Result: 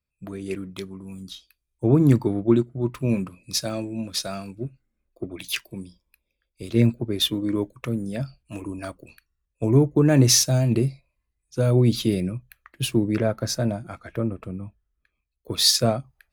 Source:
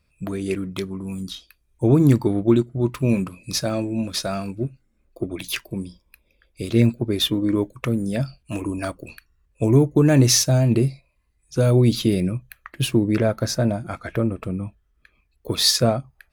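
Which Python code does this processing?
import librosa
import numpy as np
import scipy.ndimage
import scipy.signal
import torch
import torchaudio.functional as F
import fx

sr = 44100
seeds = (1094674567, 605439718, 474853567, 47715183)

y = fx.peak_eq(x, sr, hz=2100.0, db=3.0, octaves=1.8, at=(4.66, 5.81))
y = fx.band_widen(y, sr, depth_pct=40)
y = y * librosa.db_to_amplitude(-3.5)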